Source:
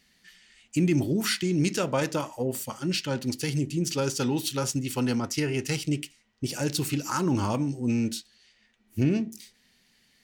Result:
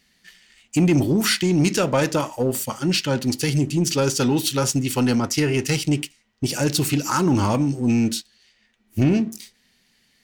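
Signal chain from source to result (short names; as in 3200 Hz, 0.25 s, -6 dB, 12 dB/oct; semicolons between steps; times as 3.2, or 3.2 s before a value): sample leveller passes 1; gain +4 dB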